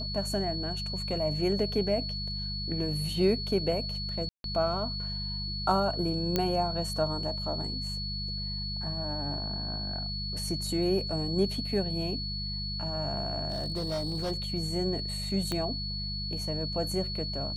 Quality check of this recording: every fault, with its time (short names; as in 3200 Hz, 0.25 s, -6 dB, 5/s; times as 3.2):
hum 50 Hz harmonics 4 -37 dBFS
tone 4400 Hz -35 dBFS
4.29–4.44 gap 0.152 s
6.36 pop -12 dBFS
13.5–14.32 clipped -27.5 dBFS
15.52 pop -17 dBFS